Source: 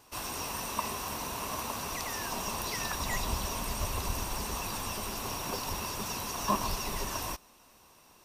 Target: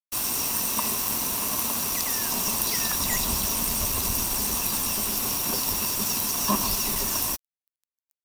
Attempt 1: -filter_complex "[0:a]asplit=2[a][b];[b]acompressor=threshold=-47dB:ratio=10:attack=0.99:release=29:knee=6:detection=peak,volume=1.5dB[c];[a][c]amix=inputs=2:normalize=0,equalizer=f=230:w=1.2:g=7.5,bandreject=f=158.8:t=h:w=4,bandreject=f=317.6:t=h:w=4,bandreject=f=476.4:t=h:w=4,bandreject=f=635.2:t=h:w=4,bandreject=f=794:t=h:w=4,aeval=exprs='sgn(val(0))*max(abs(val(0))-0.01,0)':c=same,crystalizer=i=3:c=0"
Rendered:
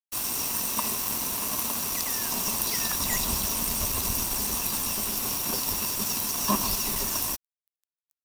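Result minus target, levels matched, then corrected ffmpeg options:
compressor: peak gain reduction +7 dB
-filter_complex "[0:a]asplit=2[a][b];[b]acompressor=threshold=-39.5dB:ratio=10:attack=0.99:release=29:knee=6:detection=peak,volume=1.5dB[c];[a][c]amix=inputs=2:normalize=0,equalizer=f=230:w=1.2:g=7.5,bandreject=f=158.8:t=h:w=4,bandreject=f=317.6:t=h:w=4,bandreject=f=476.4:t=h:w=4,bandreject=f=635.2:t=h:w=4,bandreject=f=794:t=h:w=4,aeval=exprs='sgn(val(0))*max(abs(val(0))-0.01,0)':c=same,crystalizer=i=3:c=0"

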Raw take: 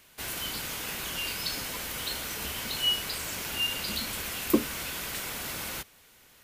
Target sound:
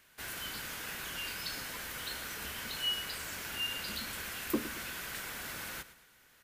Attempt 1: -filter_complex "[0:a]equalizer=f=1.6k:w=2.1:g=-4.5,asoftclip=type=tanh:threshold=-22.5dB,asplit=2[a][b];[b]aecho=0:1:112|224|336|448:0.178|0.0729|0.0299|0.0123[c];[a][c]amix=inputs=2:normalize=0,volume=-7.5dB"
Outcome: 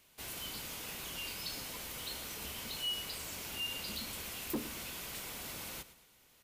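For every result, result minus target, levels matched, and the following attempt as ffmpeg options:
soft clip: distortion +10 dB; 2000 Hz band -4.0 dB
-filter_complex "[0:a]equalizer=f=1.6k:w=2.1:g=-4.5,asoftclip=type=tanh:threshold=-12dB,asplit=2[a][b];[b]aecho=0:1:112|224|336|448:0.178|0.0729|0.0299|0.0123[c];[a][c]amix=inputs=2:normalize=0,volume=-7.5dB"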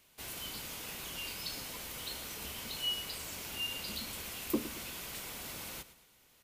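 2000 Hz band -4.5 dB
-filter_complex "[0:a]equalizer=f=1.6k:w=2.1:g=7,asoftclip=type=tanh:threshold=-12dB,asplit=2[a][b];[b]aecho=0:1:112|224|336|448:0.178|0.0729|0.0299|0.0123[c];[a][c]amix=inputs=2:normalize=0,volume=-7.5dB"

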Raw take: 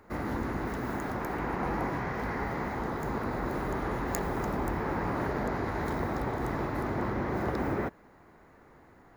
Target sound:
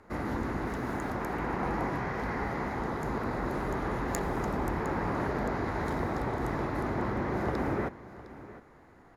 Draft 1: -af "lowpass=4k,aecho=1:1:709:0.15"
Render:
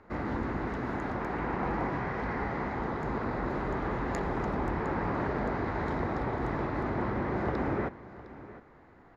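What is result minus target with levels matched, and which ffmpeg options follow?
8000 Hz band -11.0 dB
-af "lowpass=12k,aecho=1:1:709:0.15"

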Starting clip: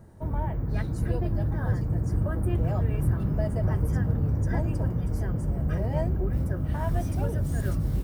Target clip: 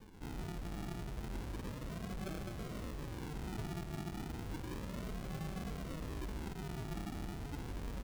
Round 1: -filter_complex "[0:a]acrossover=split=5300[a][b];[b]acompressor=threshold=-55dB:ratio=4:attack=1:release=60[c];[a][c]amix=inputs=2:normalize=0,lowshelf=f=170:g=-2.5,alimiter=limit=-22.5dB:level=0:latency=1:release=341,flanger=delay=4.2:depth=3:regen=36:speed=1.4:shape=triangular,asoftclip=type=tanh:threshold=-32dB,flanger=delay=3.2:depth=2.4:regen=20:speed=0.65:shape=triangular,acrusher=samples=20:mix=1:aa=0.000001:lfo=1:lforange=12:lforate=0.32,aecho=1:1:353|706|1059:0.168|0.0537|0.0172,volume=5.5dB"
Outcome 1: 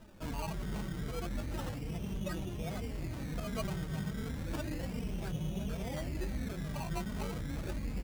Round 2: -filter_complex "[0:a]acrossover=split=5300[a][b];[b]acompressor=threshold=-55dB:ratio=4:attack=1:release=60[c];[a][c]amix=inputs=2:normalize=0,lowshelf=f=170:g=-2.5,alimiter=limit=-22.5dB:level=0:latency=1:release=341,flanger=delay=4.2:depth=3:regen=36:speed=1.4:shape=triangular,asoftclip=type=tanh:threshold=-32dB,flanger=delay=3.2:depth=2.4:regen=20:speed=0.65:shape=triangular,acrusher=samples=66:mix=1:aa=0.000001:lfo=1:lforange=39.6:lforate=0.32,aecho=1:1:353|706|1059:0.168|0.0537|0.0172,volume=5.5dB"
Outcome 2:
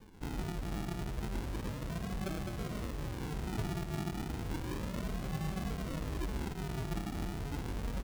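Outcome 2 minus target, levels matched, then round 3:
soft clip: distortion -8 dB
-filter_complex "[0:a]acrossover=split=5300[a][b];[b]acompressor=threshold=-55dB:ratio=4:attack=1:release=60[c];[a][c]amix=inputs=2:normalize=0,lowshelf=f=170:g=-2.5,alimiter=limit=-22.5dB:level=0:latency=1:release=341,flanger=delay=4.2:depth=3:regen=36:speed=1.4:shape=triangular,asoftclip=type=tanh:threshold=-41dB,flanger=delay=3.2:depth=2.4:regen=20:speed=0.65:shape=triangular,acrusher=samples=66:mix=1:aa=0.000001:lfo=1:lforange=39.6:lforate=0.32,aecho=1:1:353|706|1059:0.168|0.0537|0.0172,volume=5.5dB"

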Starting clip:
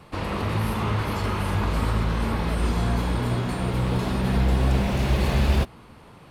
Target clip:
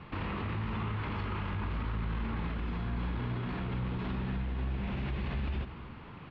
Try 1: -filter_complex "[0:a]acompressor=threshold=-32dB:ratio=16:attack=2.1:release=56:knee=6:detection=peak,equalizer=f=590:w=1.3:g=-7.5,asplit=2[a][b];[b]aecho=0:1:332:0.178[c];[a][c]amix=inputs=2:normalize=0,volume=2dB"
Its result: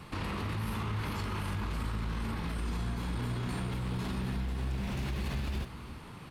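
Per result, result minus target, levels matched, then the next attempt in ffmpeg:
echo 95 ms late; 4000 Hz band +4.0 dB
-filter_complex "[0:a]acompressor=threshold=-32dB:ratio=16:attack=2.1:release=56:knee=6:detection=peak,equalizer=f=590:w=1.3:g=-7.5,asplit=2[a][b];[b]aecho=0:1:237:0.178[c];[a][c]amix=inputs=2:normalize=0,volume=2dB"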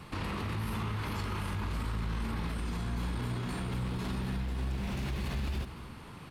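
4000 Hz band +4.0 dB
-filter_complex "[0:a]acompressor=threshold=-32dB:ratio=16:attack=2.1:release=56:knee=6:detection=peak,lowpass=f=3.2k:w=0.5412,lowpass=f=3.2k:w=1.3066,equalizer=f=590:w=1.3:g=-7.5,asplit=2[a][b];[b]aecho=0:1:237:0.178[c];[a][c]amix=inputs=2:normalize=0,volume=2dB"

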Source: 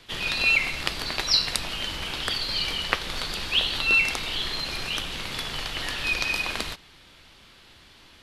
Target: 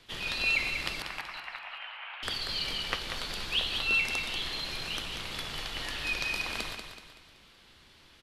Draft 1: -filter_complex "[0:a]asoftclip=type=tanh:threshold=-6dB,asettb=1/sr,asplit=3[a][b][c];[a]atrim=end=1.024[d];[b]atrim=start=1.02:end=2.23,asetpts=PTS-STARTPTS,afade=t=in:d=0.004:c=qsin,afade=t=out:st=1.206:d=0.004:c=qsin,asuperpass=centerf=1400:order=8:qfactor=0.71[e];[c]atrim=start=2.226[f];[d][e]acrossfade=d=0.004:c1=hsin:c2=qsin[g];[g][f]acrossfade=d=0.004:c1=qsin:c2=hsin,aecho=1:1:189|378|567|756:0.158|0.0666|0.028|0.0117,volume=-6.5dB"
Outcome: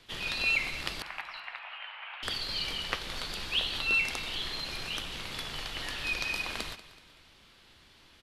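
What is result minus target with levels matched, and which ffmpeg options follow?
echo-to-direct -9 dB
-filter_complex "[0:a]asoftclip=type=tanh:threshold=-6dB,asettb=1/sr,asplit=3[a][b][c];[a]atrim=end=1.024[d];[b]atrim=start=1.02:end=2.23,asetpts=PTS-STARTPTS,afade=t=in:d=0.004:c=qsin,afade=t=out:st=1.206:d=0.004:c=qsin,asuperpass=centerf=1400:order=8:qfactor=0.71[e];[c]atrim=start=2.226[f];[d][e]acrossfade=d=0.004:c1=hsin:c2=qsin[g];[g][f]acrossfade=d=0.004:c1=qsin:c2=hsin,aecho=1:1:189|378|567|756|945:0.447|0.188|0.0788|0.0331|0.0139,volume=-6.5dB"

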